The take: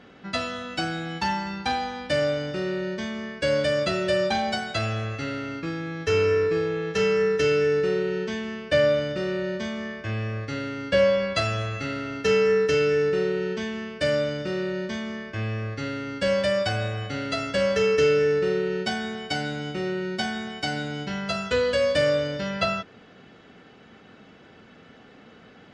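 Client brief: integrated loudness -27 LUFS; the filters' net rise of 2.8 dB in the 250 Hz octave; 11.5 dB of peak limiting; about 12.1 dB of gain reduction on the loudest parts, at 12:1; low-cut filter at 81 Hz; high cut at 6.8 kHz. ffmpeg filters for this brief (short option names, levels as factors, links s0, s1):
-af "highpass=81,lowpass=6800,equalizer=f=250:t=o:g=4,acompressor=threshold=0.0398:ratio=12,volume=2.82,alimiter=limit=0.106:level=0:latency=1"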